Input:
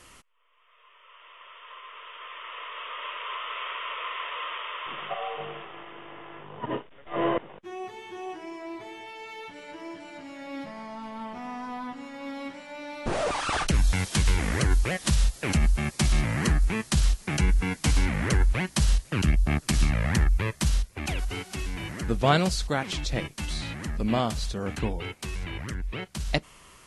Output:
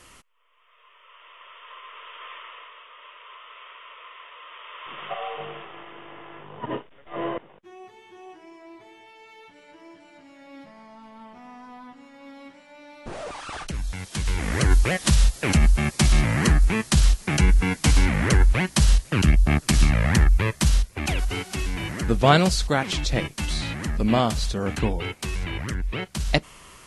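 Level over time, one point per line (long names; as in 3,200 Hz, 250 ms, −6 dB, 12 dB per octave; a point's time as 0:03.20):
0:02.32 +1.5 dB
0:02.87 −10.5 dB
0:04.43 −10.5 dB
0:05.12 +1 dB
0:06.73 +1 dB
0:07.75 −7.5 dB
0:14.00 −7.5 dB
0:14.72 +5 dB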